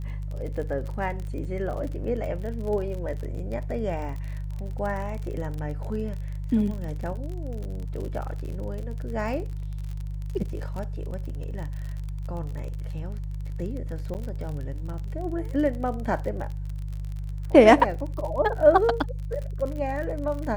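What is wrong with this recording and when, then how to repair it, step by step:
crackle 45 per s -33 dBFS
hum 50 Hz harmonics 3 -32 dBFS
14.14–14.15 s: dropout 9.3 ms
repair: de-click; de-hum 50 Hz, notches 3; interpolate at 14.14 s, 9.3 ms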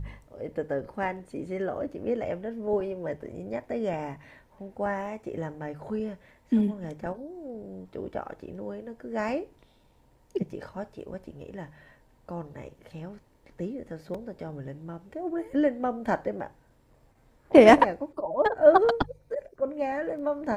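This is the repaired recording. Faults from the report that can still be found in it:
nothing left

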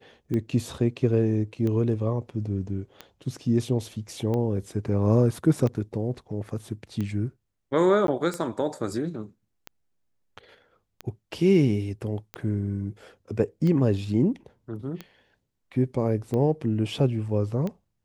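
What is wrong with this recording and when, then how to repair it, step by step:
tick 45 rpm -19 dBFS
8.07–8.08 s: dropout 12 ms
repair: de-click; interpolate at 8.07 s, 12 ms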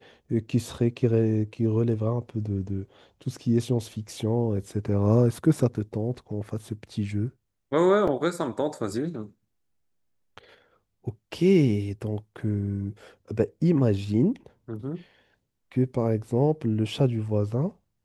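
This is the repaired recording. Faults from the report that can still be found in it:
nothing left

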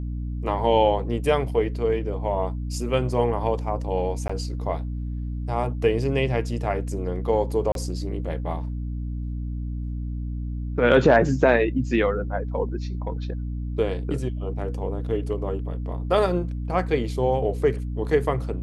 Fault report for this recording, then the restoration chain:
hum 60 Hz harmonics 5 -29 dBFS
4.28–4.29 s: dropout 15 ms
7.72–7.75 s: dropout 32 ms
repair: de-hum 60 Hz, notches 5; interpolate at 4.28 s, 15 ms; interpolate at 7.72 s, 32 ms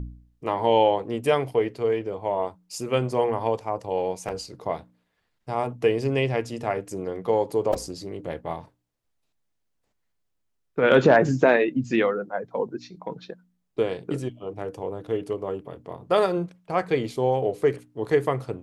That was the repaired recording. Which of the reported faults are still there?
nothing left

